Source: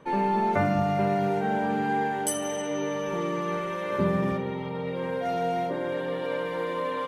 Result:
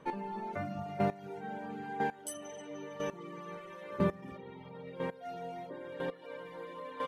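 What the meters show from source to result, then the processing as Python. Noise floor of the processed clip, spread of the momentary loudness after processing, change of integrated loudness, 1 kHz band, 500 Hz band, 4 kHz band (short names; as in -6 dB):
-51 dBFS, 13 LU, -12.0 dB, -12.0 dB, -11.5 dB, -12.5 dB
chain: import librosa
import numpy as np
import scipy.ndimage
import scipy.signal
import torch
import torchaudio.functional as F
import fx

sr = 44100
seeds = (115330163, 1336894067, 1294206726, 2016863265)

y = fx.chopper(x, sr, hz=1.0, depth_pct=65, duty_pct=10)
y = fx.dereverb_blind(y, sr, rt60_s=0.8)
y = y * librosa.db_to_amplitude(-3.5)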